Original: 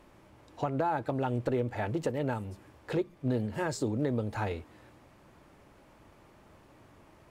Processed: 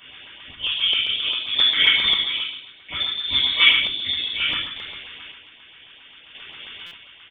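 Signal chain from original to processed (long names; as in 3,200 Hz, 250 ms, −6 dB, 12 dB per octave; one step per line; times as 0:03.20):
high-pass filter 310 Hz 24 dB per octave
convolution reverb RT60 0.75 s, pre-delay 3 ms, DRR −9.5 dB
square-wave tremolo 0.63 Hz, depth 60%, duty 35%
tilt shelving filter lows −8 dB, about 650 Hz
loudspeakers that aren't time-aligned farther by 25 metres −7 dB, 49 metres −12 dB
voice inversion scrambler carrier 3,900 Hz
in parallel at 0 dB: speech leveller 2 s
on the sum: auto-filter notch saw up 7.5 Hz 440–1,800 Hz
buffer that repeats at 0:06.86, samples 256, times 8
level −2 dB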